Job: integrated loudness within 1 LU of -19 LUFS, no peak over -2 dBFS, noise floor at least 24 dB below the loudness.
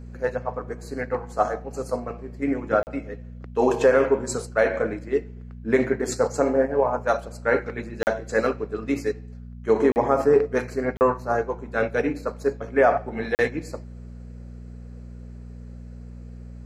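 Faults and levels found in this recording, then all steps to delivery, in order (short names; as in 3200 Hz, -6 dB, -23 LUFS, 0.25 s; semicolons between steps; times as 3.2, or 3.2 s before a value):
dropouts 5; longest dropout 39 ms; hum 60 Hz; harmonics up to 240 Hz; hum level -37 dBFS; loudness -24.0 LUFS; peak -6.0 dBFS; loudness target -19.0 LUFS
-> interpolate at 2.83/8.03/9.92/10.97/13.35, 39 ms; de-hum 60 Hz, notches 4; gain +5 dB; limiter -2 dBFS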